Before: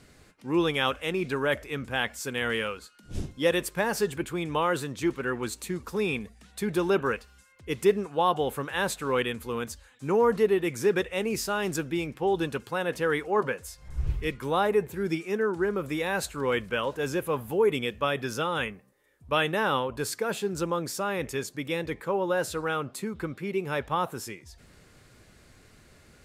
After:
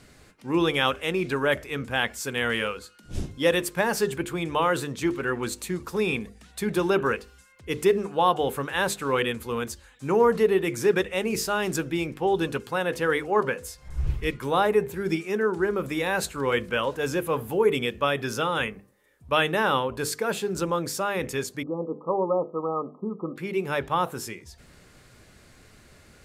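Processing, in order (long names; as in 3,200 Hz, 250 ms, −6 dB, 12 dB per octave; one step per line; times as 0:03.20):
0:21.63–0:23.36: linear-phase brick-wall band-pass 150–1,300 Hz
mains-hum notches 50/100/150/200/250/300/350/400/450/500 Hz
level +3 dB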